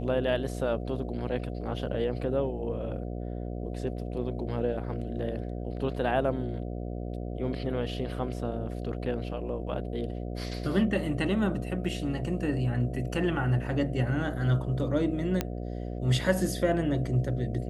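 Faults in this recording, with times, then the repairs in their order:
buzz 60 Hz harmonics 12 -35 dBFS
15.41 s: pop -13 dBFS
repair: de-click; de-hum 60 Hz, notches 12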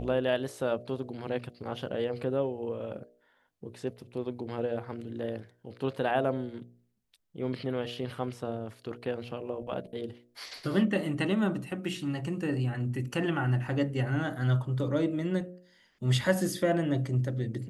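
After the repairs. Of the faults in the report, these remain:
nothing left

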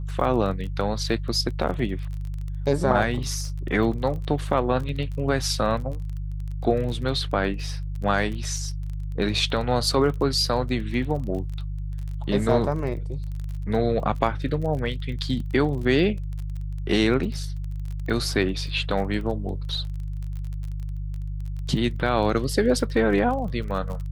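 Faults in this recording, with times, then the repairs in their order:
crackle 27 per s -32 dBFS
hum 50 Hz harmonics 3 -30 dBFS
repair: de-click; de-hum 50 Hz, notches 3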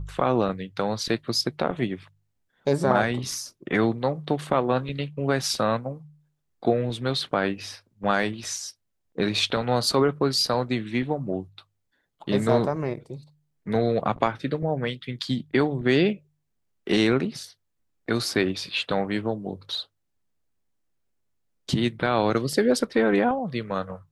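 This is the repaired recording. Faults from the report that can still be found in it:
nothing left

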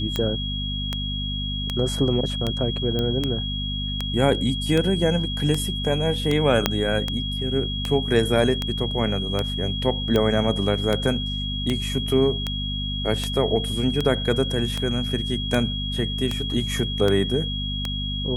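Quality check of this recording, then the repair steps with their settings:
hum 50 Hz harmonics 5 -29 dBFS
tick 78 rpm -10 dBFS
whine 3.3 kHz -29 dBFS
2.99 s: pop -13 dBFS
6.66 s: pop -2 dBFS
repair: de-click; band-stop 3.3 kHz, Q 30; de-hum 50 Hz, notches 5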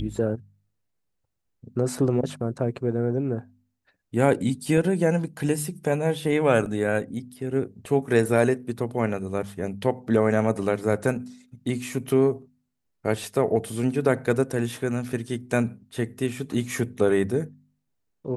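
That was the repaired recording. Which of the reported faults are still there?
2.99 s: pop
6.66 s: pop

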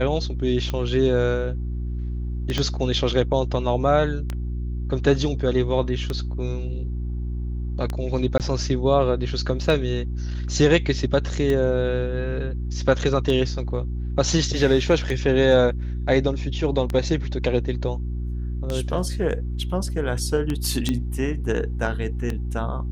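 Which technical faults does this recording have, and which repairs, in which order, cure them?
hum 60 Hz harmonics 6 -27 dBFS
tick 33 1/3 rpm -13 dBFS
2.58 s: pop -10 dBFS
8.38–8.40 s: dropout 18 ms
20.89 s: pop -10 dBFS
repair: de-click; de-hum 60 Hz, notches 6; interpolate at 8.38 s, 18 ms

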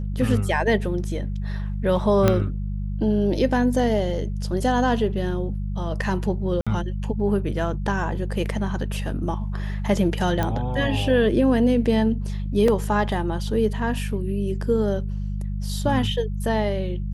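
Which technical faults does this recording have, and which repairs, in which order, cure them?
hum 50 Hz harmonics 4 -27 dBFS
2.28 s: pop -5 dBFS
6.61–6.67 s: dropout 56 ms
10.43 s: pop -11 dBFS
12.68 s: dropout 3.2 ms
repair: de-click; de-hum 50 Hz, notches 4; interpolate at 6.61 s, 56 ms; interpolate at 12.68 s, 3.2 ms

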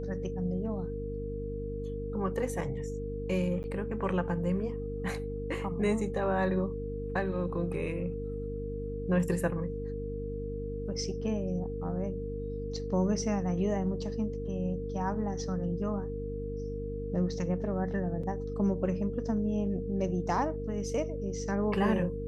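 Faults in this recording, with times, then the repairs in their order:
hum 50 Hz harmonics 6 -38 dBFS
whine 460 Hz -37 dBFS
3.63–3.64 s: dropout 9.9 ms
18.23 s: dropout 4.8 ms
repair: de-hum 50 Hz, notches 6; band-stop 460 Hz, Q 30; interpolate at 3.63 s, 9.9 ms; interpolate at 18.23 s, 4.8 ms

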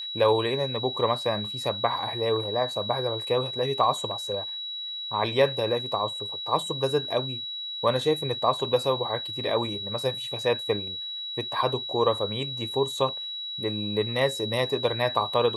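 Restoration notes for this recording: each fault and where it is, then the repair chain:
whine 3.9 kHz -32 dBFS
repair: band-stop 3.9 kHz, Q 30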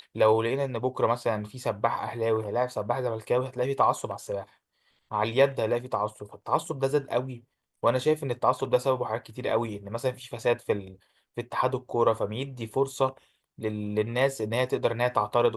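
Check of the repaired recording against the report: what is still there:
nothing left

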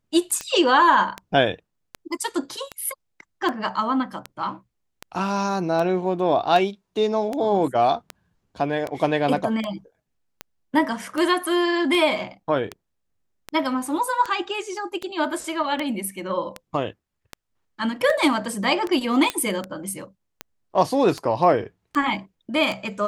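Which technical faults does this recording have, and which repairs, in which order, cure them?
tick 78 rpm -14 dBFS
19.30 s: pop -8 dBFS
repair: de-click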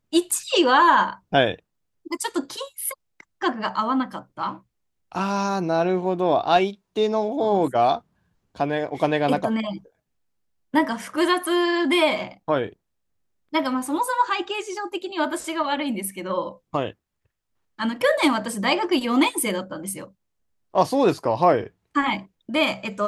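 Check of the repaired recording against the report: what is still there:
nothing left

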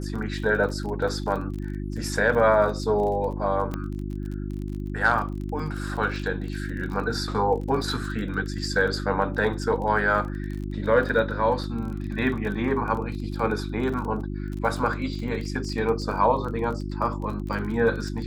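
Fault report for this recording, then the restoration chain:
crackle 25 per s -32 dBFS
hum 50 Hz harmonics 7 -31 dBFS
3.74 s: pop -17 dBFS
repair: de-click; de-hum 50 Hz, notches 7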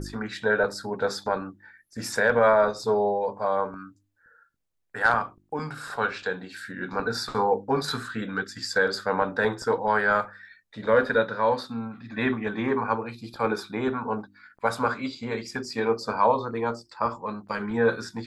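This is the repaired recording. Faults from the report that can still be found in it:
3.74 s: pop

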